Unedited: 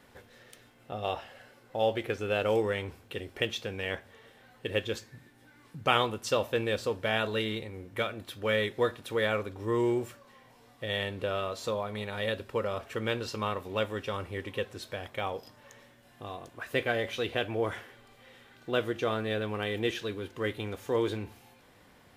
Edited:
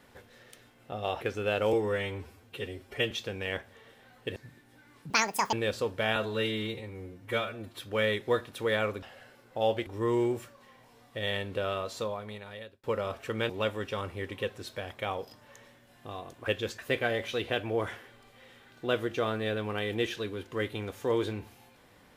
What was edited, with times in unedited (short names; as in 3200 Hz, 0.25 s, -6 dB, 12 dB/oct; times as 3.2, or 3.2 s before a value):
1.21–2.05 move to 9.53
2.57–3.49 stretch 1.5×
4.74–5.05 move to 16.63
5.79–6.58 speed 184%
7.21–8.3 stretch 1.5×
11.53–12.5 fade out
13.16–13.65 cut